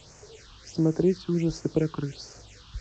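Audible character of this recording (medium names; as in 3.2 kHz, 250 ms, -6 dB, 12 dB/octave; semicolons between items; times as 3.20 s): a quantiser's noise floor 8-bit, dither triangular; phasing stages 6, 1.4 Hz, lowest notch 540–3700 Hz; G.722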